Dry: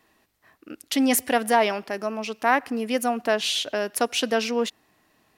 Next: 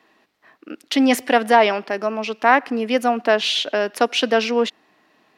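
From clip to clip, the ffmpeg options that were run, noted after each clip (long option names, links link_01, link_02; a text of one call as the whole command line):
ffmpeg -i in.wav -filter_complex "[0:a]acrossover=split=170 5200:gain=0.1 1 0.178[link_01][link_02][link_03];[link_01][link_02][link_03]amix=inputs=3:normalize=0,volume=6dB" out.wav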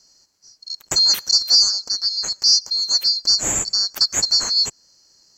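ffmpeg -i in.wav -filter_complex "[0:a]afftfilt=real='real(if(lt(b,736),b+184*(1-2*mod(floor(b/184),2)),b),0)':imag='imag(if(lt(b,736),b+184*(1-2*mod(floor(b/184),2)),b),0)':win_size=2048:overlap=0.75,asplit=2[link_01][link_02];[link_02]acompressor=threshold=-26dB:ratio=6,volume=-1dB[link_03];[link_01][link_03]amix=inputs=2:normalize=0,volume=-2dB" out.wav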